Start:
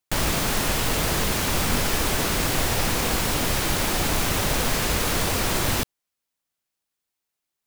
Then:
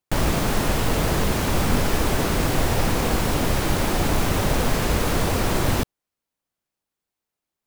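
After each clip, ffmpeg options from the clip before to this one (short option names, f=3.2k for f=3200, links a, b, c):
-af "tiltshelf=f=1.4k:g=4.5"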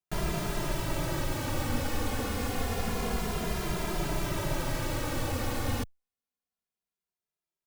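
-filter_complex "[0:a]asplit=2[a][b];[b]adelay=2.5,afreqshift=-0.28[c];[a][c]amix=inputs=2:normalize=1,volume=-7dB"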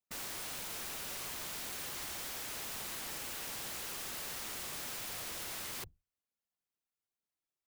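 -af "afftfilt=real='hypot(re,im)*cos(2*PI*random(0))':imag='hypot(re,im)*sin(2*PI*random(1))':win_size=512:overlap=0.75,aeval=exprs='(mod(100*val(0)+1,2)-1)/100':c=same,volume=2.5dB"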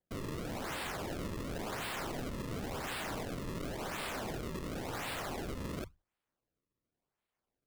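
-af "acrusher=samples=33:mix=1:aa=0.000001:lfo=1:lforange=52.8:lforate=0.93,volume=3dB"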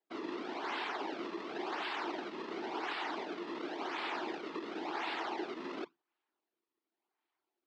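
-af "afftfilt=real='hypot(re,im)*cos(2*PI*random(0))':imag='hypot(re,im)*sin(2*PI*random(1))':win_size=512:overlap=0.75,highpass=f=300:w=0.5412,highpass=f=300:w=1.3066,equalizer=f=340:t=q:w=4:g=7,equalizer=f=530:t=q:w=4:g=-10,equalizer=f=880:t=q:w=4:g=5,lowpass=f=4.5k:w=0.5412,lowpass=f=4.5k:w=1.3066,volume=7.5dB"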